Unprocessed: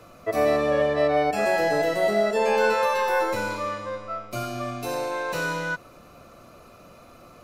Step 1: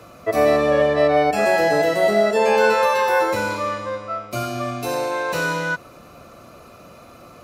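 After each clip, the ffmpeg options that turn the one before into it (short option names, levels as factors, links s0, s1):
-af "highpass=41,volume=1.78"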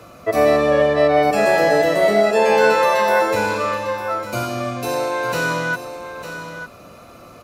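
-af "aecho=1:1:902:0.299,volume=1.19"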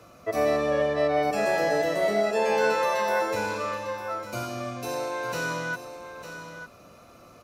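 -af "equalizer=f=5800:t=o:w=0.32:g=4.5,volume=0.355"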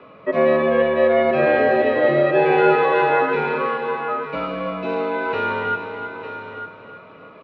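-af "highpass=f=210:t=q:w=0.5412,highpass=f=210:t=q:w=1.307,lowpass=f=3300:t=q:w=0.5176,lowpass=f=3300:t=q:w=0.7071,lowpass=f=3300:t=q:w=1.932,afreqshift=-62,aecho=1:1:317|634|951|1268|1585:0.335|0.147|0.0648|0.0285|0.0126,volume=2.37"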